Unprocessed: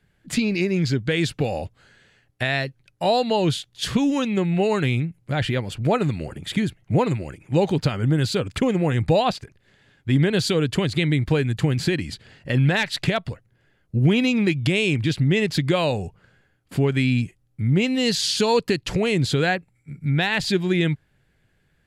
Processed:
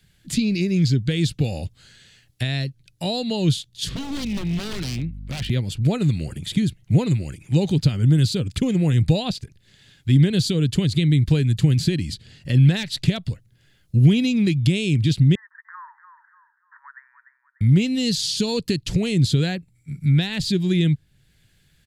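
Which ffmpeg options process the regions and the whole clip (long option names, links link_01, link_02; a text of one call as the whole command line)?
ffmpeg -i in.wav -filter_complex "[0:a]asettb=1/sr,asplit=3[link_01][link_02][link_03];[link_01]atrim=end=3.894[link_04];[link_02]atrim=start=3.89:end=5.5,asetpts=PTS-STARTPTS,afade=type=in:duration=0.004:curve=qsin,afade=type=out:start_time=1.606:duration=0.004:curve=qsin,acrossover=split=180 4400:gain=0.224 1 0.224[link_05][link_06][link_07];[link_05][link_06][link_07]amix=inputs=3:normalize=0,aeval=exprs='val(0)+0.0126*(sin(2*PI*50*n/s)+sin(2*PI*2*50*n/s)/2+sin(2*PI*3*50*n/s)/3+sin(2*PI*4*50*n/s)/4+sin(2*PI*5*50*n/s)/5)':channel_layout=same,aeval=exprs='0.075*(abs(mod(val(0)/0.075+3,4)-2)-1)':channel_layout=same[link_08];[link_03]atrim=start=5.496[link_09];[link_04][link_08]acrossfade=duration=0.004:curve1=hsin:curve2=qsin[link_10];[link_10][link_09]acrossfade=duration=0.004:curve1=qsin:curve2=hsin,asettb=1/sr,asplit=3[link_11][link_12][link_13];[link_11]atrim=end=15.354[link_14];[link_12]atrim=start=15.35:end=17.61,asetpts=PTS-STARTPTS,afade=type=in:duration=0.004:curve=qsin,afade=type=out:start_time=2.256:duration=0.004:curve=qsin,asuperpass=centerf=1300:order=20:qfactor=1.4,aecho=1:1:295|590|885:0.2|0.0638|0.0204,atrim=end_sample=99666[link_15];[link_13]atrim=start=17.606[link_16];[link_14][link_15]acrossfade=duration=0.004:curve1=hsin:curve2=qsin[link_17];[link_17][link_16]acrossfade=duration=0.004:curve1=qsin:curve2=hsin,firequalizer=gain_entry='entry(150,0);entry(240,-4);entry(430,-8);entry(920,-8);entry(3700,8)':delay=0.05:min_phase=1,acrossover=split=500[link_18][link_19];[link_19]acompressor=threshold=-54dB:ratio=1.5[link_20];[link_18][link_20]amix=inputs=2:normalize=0,volume=5dB" out.wav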